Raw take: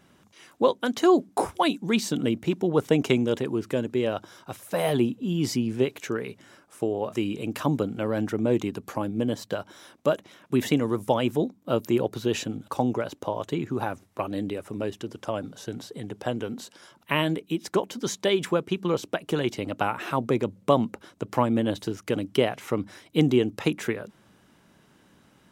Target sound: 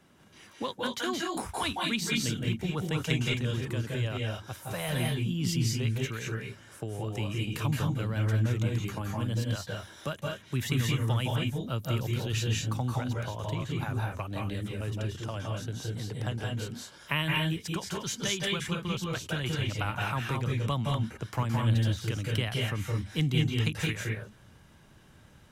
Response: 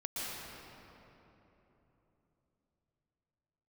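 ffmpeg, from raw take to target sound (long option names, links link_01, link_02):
-filter_complex "[1:a]atrim=start_sample=2205,afade=type=out:start_time=0.2:duration=0.01,atrim=end_sample=9261,asetrate=29988,aresample=44100[link_01];[0:a][link_01]afir=irnorm=-1:irlink=0,acrossover=split=200|1200|3300[link_02][link_03][link_04][link_05];[link_03]acompressor=threshold=-38dB:ratio=6[link_06];[link_02][link_06][link_04][link_05]amix=inputs=4:normalize=0,asubboost=boost=5:cutoff=100"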